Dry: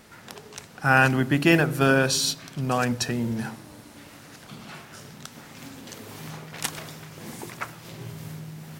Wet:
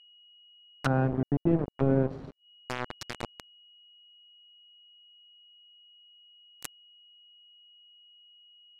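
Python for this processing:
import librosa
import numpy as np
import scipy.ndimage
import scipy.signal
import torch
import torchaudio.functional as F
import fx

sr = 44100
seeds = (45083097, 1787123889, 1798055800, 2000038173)

y = fx.rotary_switch(x, sr, hz=0.8, then_hz=8.0, switch_at_s=3.51)
y = np.where(np.abs(y) >= 10.0 ** (-21.0 / 20.0), y, 0.0)
y = y + 10.0 ** (-55.0 / 20.0) * np.sin(2.0 * np.pi * 2900.0 * np.arange(len(y)) / sr)
y = fx.env_lowpass_down(y, sr, base_hz=490.0, full_db=-24.5)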